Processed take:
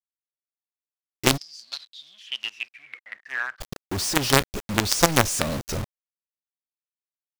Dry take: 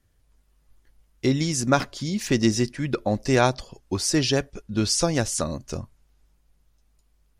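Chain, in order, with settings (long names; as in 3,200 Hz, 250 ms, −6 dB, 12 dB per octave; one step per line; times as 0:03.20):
log-companded quantiser 2 bits
0:01.36–0:03.60: resonant band-pass 5,200 Hz → 1,500 Hz, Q 14
level −1 dB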